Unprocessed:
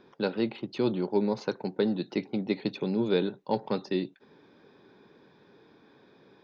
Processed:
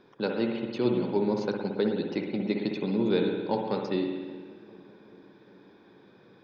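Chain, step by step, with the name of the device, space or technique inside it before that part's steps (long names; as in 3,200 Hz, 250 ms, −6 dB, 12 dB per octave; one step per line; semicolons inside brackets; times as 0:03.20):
dub delay into a spring reverb (feedback echo with a low-pass in the loop 393 ms, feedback 72%, low-pass 830 Hz, level −20 dB; spring reverb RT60 1.4 s, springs 57 ms, chirp 80 ms, DRR 2 dB)
level −1 dB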